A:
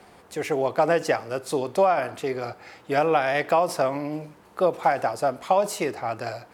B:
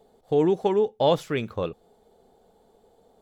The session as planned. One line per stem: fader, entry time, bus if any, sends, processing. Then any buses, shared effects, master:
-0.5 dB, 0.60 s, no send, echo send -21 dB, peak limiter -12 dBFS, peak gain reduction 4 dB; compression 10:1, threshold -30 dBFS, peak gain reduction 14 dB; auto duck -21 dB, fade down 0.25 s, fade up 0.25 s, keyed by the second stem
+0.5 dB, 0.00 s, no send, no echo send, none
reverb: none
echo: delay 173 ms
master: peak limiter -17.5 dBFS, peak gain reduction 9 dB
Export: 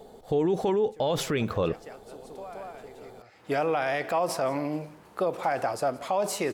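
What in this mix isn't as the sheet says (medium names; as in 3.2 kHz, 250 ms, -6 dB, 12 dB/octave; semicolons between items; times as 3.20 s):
stem A: missing compression 10:1, threshold -30 dBFS, peak gain reduction 14 dB; stem B +0.5 dB -> +10.5 dB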